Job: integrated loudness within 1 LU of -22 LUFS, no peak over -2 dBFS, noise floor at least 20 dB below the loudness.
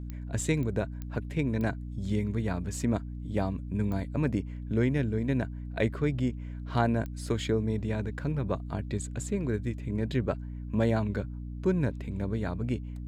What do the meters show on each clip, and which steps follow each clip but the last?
clicks 6; hum 60 Hz; harmonics up to 300 Hz; hum level -35 dBFS; loudness -31.0 LUFS; peak -12.0 dBFS; loudness target -22.0 LUFS
-> de-click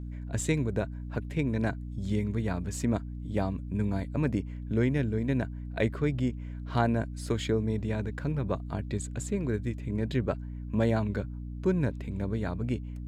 clicks 0; hum 60 Hz; harmonics up to 300 Hz; hum level -35 dBFS
-> notches 60/120/180/240/300 Hz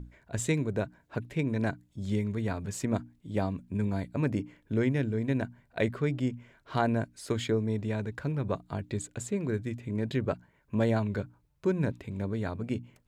hum none; loudness -32.0 LUFS; peak -12.5 dBFS; loudness target -22.0 LUFS
-> gain +10 dB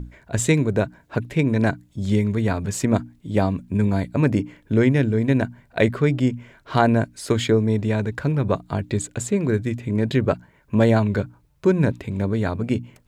loudness -22.0 LUFS; peak -2.5 dBFS; noise floor -58 dBFS

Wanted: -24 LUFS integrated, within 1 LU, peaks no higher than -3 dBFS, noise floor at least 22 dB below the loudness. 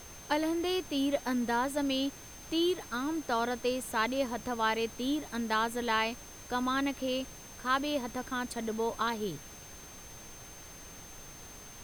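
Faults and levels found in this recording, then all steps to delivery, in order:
steady tone 6300 Hz; tone level -51 dBFS; noise floor -49 dBFS; noise floor target -55 dBFS; loudness -32.5 LUFS; peak -16.5 dBFS; loudness target -24.0 LUFS
-> notch 6300 Hz, Q 30; noise print and reduce 6 dB; gain +8.5 dB

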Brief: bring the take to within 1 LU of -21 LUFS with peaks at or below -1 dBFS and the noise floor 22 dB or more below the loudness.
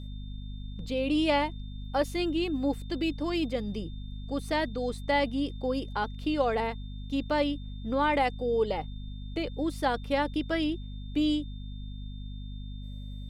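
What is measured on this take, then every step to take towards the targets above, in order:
hum 50 Hz; harmonics up to 250 Hz; hum level -36 dBFS; steady tone 3600 Hz; tone level -54 dBFS; loudness -30.0 LUFS; peak -13.5 dBFS; loudness target -21.0 LUFS
-> de-hum 50 Hz, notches 5; notch 3600 Hz, Q 30; gain +9 dB

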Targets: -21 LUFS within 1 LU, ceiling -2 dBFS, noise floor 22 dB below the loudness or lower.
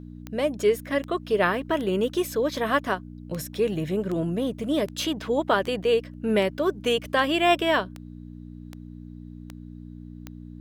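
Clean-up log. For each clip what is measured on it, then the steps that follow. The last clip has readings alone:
clicks 14; hum 60 Hz; harmonics up to 300 Hz; hum level -38 dBFS; loudness -25.0 LUFS; peak -7.5 dBFS; loudness target -21.0 LUFS
-> de-click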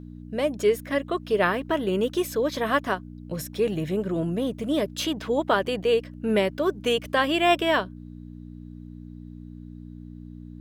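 clicks 0; hum 60 Hz; harmonics up to 300 Hz; hum level -38 dBFS
-> de-hum 60 Hz, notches 5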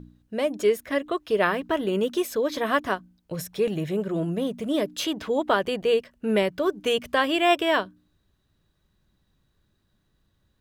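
hum none; loudness -25.0 LUFS; peak -7.5 dBFS; loudness target -21.0 LUFS
-> gain +4 dB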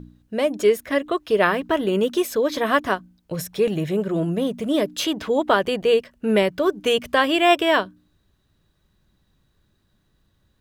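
loudness -21.5 LUFS; peak -3.5 dBFS; noise floor -67 dBFS

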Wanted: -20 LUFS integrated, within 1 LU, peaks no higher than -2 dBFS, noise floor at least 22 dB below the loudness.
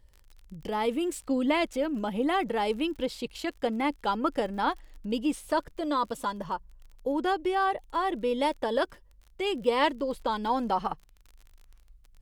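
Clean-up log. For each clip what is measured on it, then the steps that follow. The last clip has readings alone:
ticks 35/s; loudness -29.5 LUFS; peak -12.0 dBFS; loudness target -20.0 LUFS
-> de-click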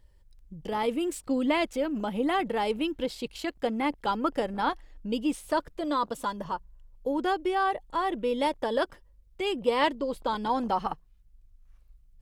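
ticks 0.57/s; loudness -29.5 LUFS; peak -12.0 dBFS; loudness target -20.0 LUFS
-> gain +9.5 dB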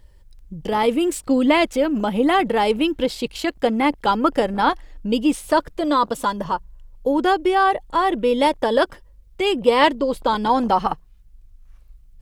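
loudness -20.0 LUFS; peak -2.5 dBFS; noise floor -49 dBFS

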